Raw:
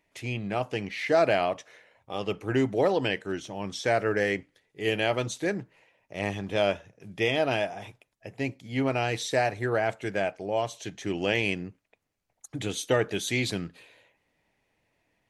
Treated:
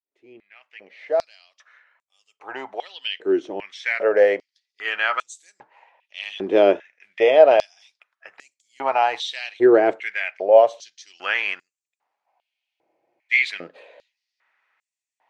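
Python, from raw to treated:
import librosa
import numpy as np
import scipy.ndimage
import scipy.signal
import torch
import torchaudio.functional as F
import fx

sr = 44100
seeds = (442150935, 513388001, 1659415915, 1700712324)

y = fx.fade_in_head(x, sr, length_s=4.92)
y = fx.spacing_loss(y, sr, db_at_10k=23)
y = fx.spec_freeze(y, sr, seeds[0], at_s=12.28, hold_s=1.04)
y = fx.filter_held_highpass(y, sr, hz=2.5, low_hz=360.0, high_hz=7600.0)
y = F.gain(torch.from_numpy(y), 7.5).numpy()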